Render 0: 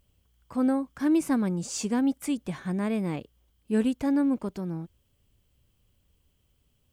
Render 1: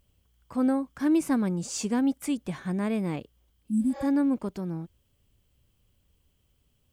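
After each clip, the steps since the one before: spectral replace 3.71–4.01 s, 320–7500 Hz both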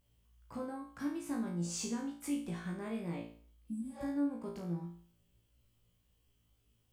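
compression 4:1, threshold -31 dBFS, peak gain reduction 10 dB; on a send: flutter echo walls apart 3 m, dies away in 0.47 s; on the sum: trim -8 dB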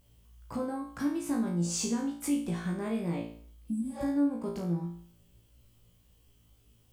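peaking EQ 1.9 kHz -3 dB 1.9 oct; in parallel at -2.5 dB: compression, threshold -47 dBFS, peak gain reduction 16.5 dB; on the sum: trim +5.5 dB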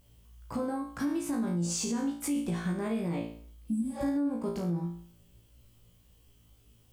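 peak limiter -25 dBFS, peak gain reduction 6.5 dB; trim +2 dB

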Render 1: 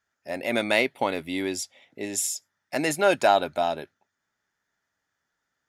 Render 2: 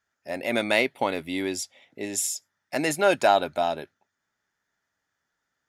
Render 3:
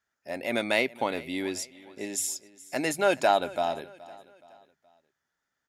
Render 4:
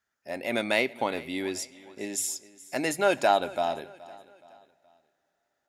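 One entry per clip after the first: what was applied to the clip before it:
no audible change
hum notches 50/100/150 Hz; feedback delay 422 ms, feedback 42%, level -20 dB; trim -3 dB
reverberation, pre-delay 3 ms, DRR 19.5 dB

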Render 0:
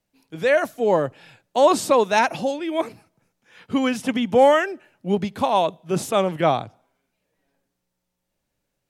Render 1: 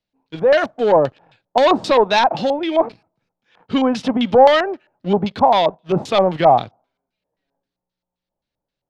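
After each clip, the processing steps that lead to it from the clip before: waveshaping leveller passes 2; LFO low-pass square 3.8 Hz 850–4100 Hz; trim -3 dB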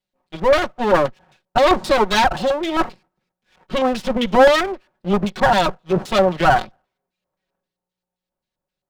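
comb filter that takes the minimum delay 5.4 ms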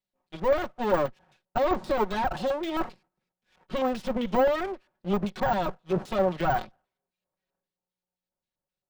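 de-esser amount 80%; trim -8 dB

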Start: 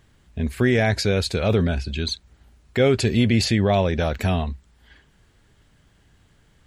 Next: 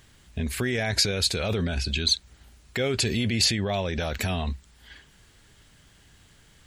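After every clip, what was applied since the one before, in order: peak limiter -19 dBFS, peak gain reduction 10.5 dB; treble shelf 2 kHz +9.5 dB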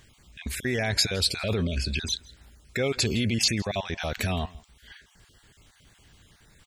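random holes in the spectrogram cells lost 23%; delay 165 ms -23 dB

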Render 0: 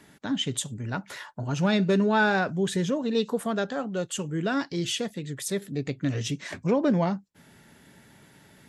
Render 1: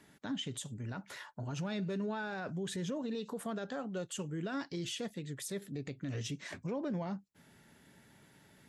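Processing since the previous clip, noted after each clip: peak limiter -23 dBFS, peak gain reduction 11.5 dB; trim -7.5 dB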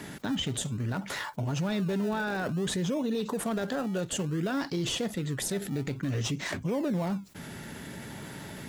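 in parallel at -10.5 dB: decimation with a swept rate 28×, swing 100% 0.57 Hz; on the sum: level flattener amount 50%; trim +4.5 dB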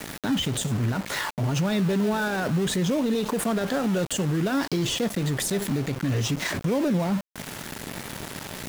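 small samples zeroed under -38 dBFS; peak limiter -26 dBFS, peak gain reduction 6 dB; trim +8.5 dB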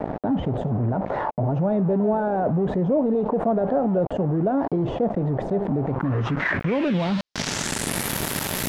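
low-pass sweep 710 Hz -> 13 kHz, 5.76–8.11 s; in parallel at -3 dB: compressor with a negative ratio -34 dBFS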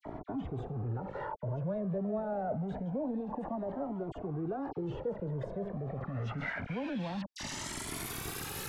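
phase dispersion lows, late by 53 ms, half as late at 1.9 kHz; Shepard-style flanger rising 0.26 Hz; trim -8.5 dB

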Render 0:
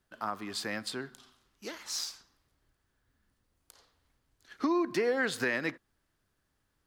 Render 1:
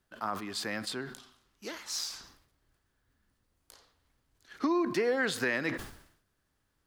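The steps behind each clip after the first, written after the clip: decay stretcher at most 84 dB/s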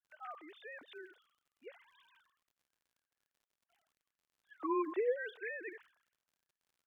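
formants replaced by sine waves; crackle 78 per s -55 dBFS; trim -8 dB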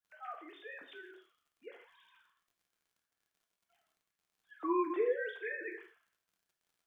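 reverberation, pre-delay 3 ms, DRR 2 dB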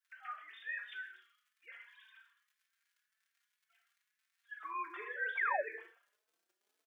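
high-pass sweep 1.7 kHz -> 360 Hz, 4.68–6.41 s; painted sound fall, 5.37–5.62 s, 510–2400 Hz -34 dBFS; endless flanger 4.1 ms +1.9 Hz; trim +3 dB

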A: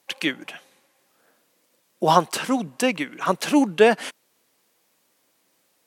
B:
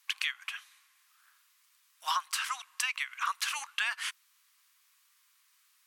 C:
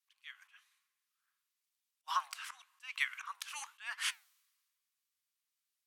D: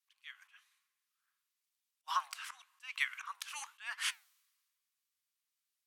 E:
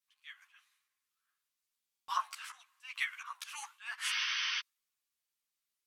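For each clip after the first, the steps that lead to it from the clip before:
elliptic high-pass 1.1 kHz, stop band 60 dB; compression 6:1, threshold -28 dBFS, peak gain reduction 11 dB
slow attack 231 ms; flange 1 Hz, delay 4.2 ms, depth 7.7 ms, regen +87%; three bands expanded up and down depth 70%; trim +1 dB
no audible change
spectral replace 4.12–4.57 s, 900–6200 Hz before; buffer glitch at 1.85 s, samples 1024, times 9; three-phase chorus; trim +2.5 dB

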